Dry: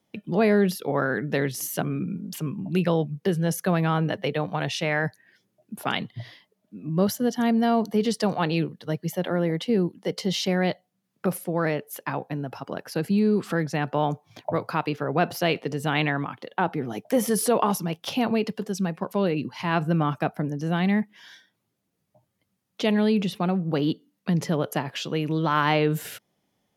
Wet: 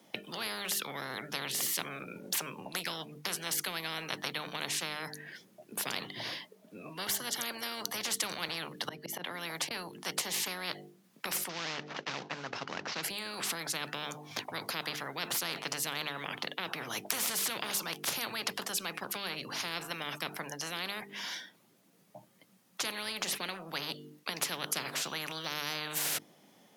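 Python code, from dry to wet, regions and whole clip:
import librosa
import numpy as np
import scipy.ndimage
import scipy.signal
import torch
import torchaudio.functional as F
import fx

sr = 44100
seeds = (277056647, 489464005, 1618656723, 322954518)

y = fx.chain(x, sr, fx.auto_swell(attack_ms=480.0),
    fx.band_squash(depth_pct=40), at=(8.48, 9.71))
y = fx.chain(y, sr, fx.cvsd(bps=32000),
    fx.high_shelf(hz=3100.0, db=-11.0), at=(11.49, 13.03))
y = scipy.signal.sosfilt(scipy.signal.butter(4, 160.0, 'highpass', fs=sr, output='sos'), y)
y = fx.hum_notches(y, sr, base_hz=50, count=9)
y = fx.spectral_comp(y, sr, ratio=10.0)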